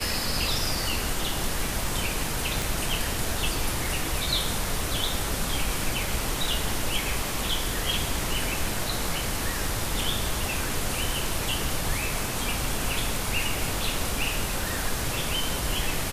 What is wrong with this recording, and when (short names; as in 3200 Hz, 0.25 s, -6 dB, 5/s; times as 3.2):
2.62 pop